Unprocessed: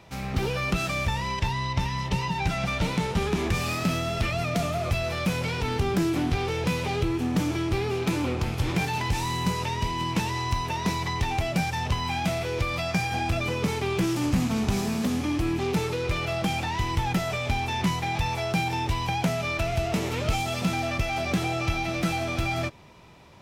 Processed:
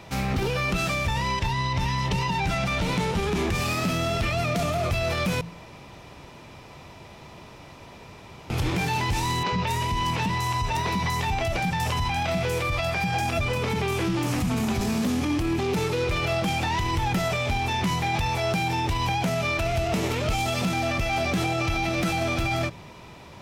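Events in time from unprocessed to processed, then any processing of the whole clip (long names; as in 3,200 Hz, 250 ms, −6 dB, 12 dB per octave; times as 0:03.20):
0:05.41–0:08.50: fill with room tone
0:09.43–0:14.81: three-band delay without the direct sound mids, lows, highs 90/240 ms, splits 300/5,100 Hz
whole clip: hum removal 56.24 Hz, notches 3; brickwall limiter −24.5 dBFS; level +7 dB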